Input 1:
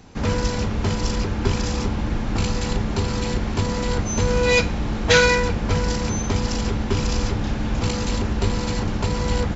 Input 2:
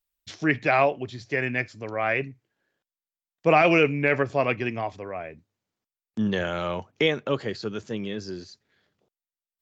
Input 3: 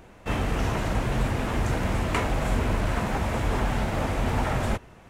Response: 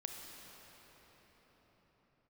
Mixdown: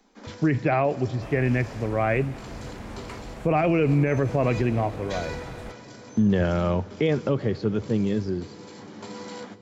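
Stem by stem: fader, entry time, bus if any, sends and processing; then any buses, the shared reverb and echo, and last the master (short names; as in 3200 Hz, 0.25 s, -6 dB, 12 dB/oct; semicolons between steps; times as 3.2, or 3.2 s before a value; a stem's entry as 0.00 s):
-9.0 dB, 0.00 s, send -9 dB, steep high-pass 190 Hz 96 dB/oct; notch 2700 Hz, Q 11; flange 0.77 Hz, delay 9.6 ms, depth 3.8 ms, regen +65%; auto duck -13 dB, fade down 0.50 s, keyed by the second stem
0.0 dB, 0.00 s, send -15.5 dB, tilt -3.5 dB/oct
-14.0 dB, 0.95 s, no send, dry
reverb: on, pre-delay 27 ms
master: limiter -13 dBFS, peak gain reduction 9.5 dB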